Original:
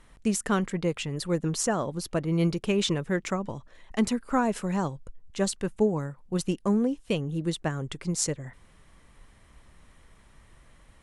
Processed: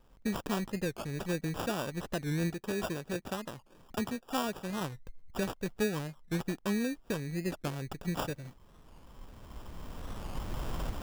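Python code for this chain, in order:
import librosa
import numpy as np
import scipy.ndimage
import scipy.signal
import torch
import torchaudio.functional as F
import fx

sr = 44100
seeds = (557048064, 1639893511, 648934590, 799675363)

y = fx.recorder_agc(x, sr, target_db=-17.0, rise_db_per_s=12.0, max_gain_db=30)
y = fx.low_shelf(y, sr, hz=140.0, db=-10.0, at=(2.5, 4.82))
y = fx.sample_hold(y, sr, seeds[0], rate_hz=2100.0, jitter_pct=0)
y = fx.record_warp(y, sr, rpm=45.0, depth_cents=160.0)
y = F.gain(torch.from_numpy(y), -7.5).numpy()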